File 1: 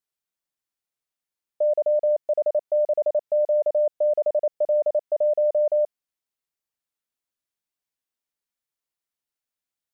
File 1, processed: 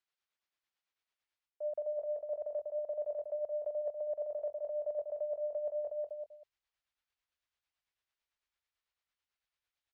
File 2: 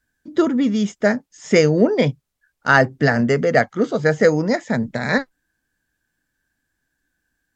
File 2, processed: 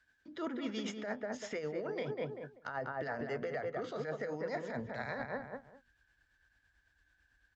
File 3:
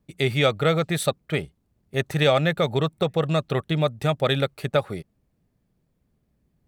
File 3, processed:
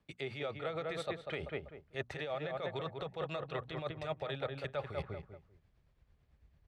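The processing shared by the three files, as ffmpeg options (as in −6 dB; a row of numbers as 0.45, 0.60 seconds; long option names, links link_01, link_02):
-filter_complex "[0:a]acrossover=split=240|1000[link_01][link_02][link_03];[link_01]acompressor=threshold=-32dB:ratio=4[link_04];[link_02]acompressor=threshold=-18dB:ratio=4[link_05];[link_03]acompressor=threshold=-36dB:ratio=4[link_06];[link_04][link_05][link_06]amix=inputs=3:normalize=0,bandreject=frequency=60:width_type=h:width=6,bandreject=frequency=120:width_type=h:width=6,bandreject=frequency=180:width_type=h:width=6,bandreject=frequency=240:width_type=h:width=6,asplit=2[link_07][link_08];[link_08]adelay=194,lowpass=frequency=1600:poles=1,volume=-6dB,asplit=2[link_09][link_10];[link_10]adelay=194,lowpass=frequency=1600:poles=1,volume=0.27,asplit=2[link_11][link_12];[link_12]adelay=194,lowpass=frequency=1600:poles=1,volume=0.27[link_13];[link_07][link_09][link_11][link_13]amix=inputs=4:normalize=0,asubboost=boost=5:cutoff=91,lowpass=3800,equalizer=frequency=190:width=0.31:gain=-12,alimiter=level_in=0.5dB:limit=-24dB:level=0:latency=1:release=36,volume=-0.5dB,areverse,acompressor=threshold=-41dB:ratio=5,areverse,tremolo=f=9:d=0.47,highpass=56,volume=6.5dB"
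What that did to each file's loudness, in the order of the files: −15.0, −21.5, −17.0 LU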